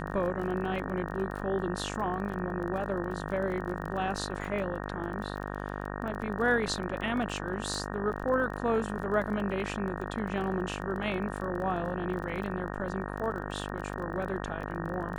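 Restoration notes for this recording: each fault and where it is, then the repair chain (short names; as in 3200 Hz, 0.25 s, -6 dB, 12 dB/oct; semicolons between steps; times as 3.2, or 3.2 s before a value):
buzz 50 Hz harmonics 37 -37 dBFS
crackle 23/s -37 dBFS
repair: de-click; de-hum 50 Hz, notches 37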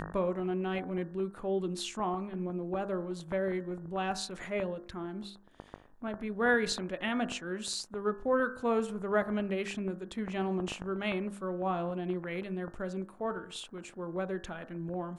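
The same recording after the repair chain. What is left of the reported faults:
none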